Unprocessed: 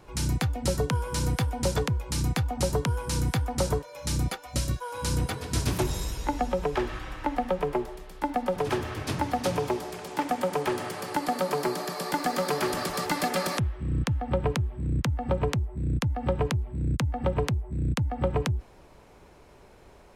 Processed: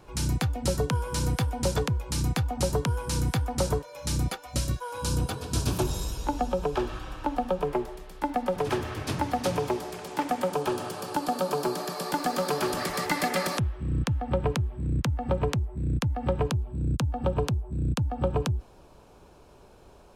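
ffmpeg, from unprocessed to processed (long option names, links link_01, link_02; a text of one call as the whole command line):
ffmpeg -i in.wav -af "asetnsamples=nb_out_samples=441:pad=0,asendcmd='4.99 equalizer g -13;7.65 equalizer g -2;10.52 equalizer g -13.5;11.75 equalizer g -6.5;12.8 equalizer g 5;13.48 equalizer g -3.5;16.47 equalizer g -12.5',equalizer=frequency=2000:width_type=o:width=0.32:gain=-3" out.wav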